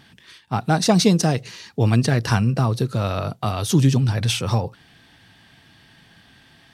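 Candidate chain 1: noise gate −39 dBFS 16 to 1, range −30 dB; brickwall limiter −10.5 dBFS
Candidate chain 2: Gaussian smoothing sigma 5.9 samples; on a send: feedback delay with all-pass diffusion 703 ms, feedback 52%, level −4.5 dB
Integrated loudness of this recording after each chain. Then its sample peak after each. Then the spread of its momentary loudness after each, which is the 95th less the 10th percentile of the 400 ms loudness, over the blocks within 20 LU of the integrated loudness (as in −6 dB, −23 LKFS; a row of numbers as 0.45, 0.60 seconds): −22.0, −20.5 LKFS; −10.5, −5.5 dBFS; 8, 14 LU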